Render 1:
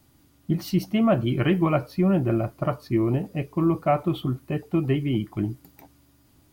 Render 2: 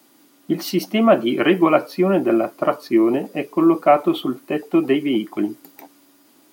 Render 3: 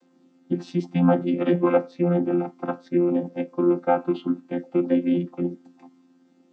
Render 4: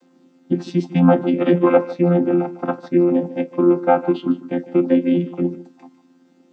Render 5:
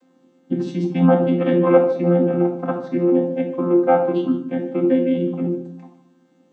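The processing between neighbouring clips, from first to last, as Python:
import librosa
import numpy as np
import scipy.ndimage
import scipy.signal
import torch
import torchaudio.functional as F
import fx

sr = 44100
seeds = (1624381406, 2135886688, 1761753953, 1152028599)

y1 = scipy.signal.sosfilt(scipy.signal.butter(4, 250.0, 'highpass', fs=sr, output='sos'), x)
y1 = y1 * librosa.db_to_amplitude(8.5)
y2 = fx.chord_vocoder(y1, sr, chord='bare fifth', root=53)
y2 = y2 * librosa.db_to_amplitude(-3.5)
y3 = y2 + 10.0 ** (-16.5 / 20.0) * np.pad(y2, (int(151 * sr / 1000.0), 0))[:len(y2)]
y3 = y3 * librosa.db_to_amplitude(5.5)
y4 = fx.room_shoebox(y3, sr, seeds[0], volume_m3=990.0, walls='furnished', distance_m=2.0)
y4 = y4 * librosa.db_to_amplitude(-4.5)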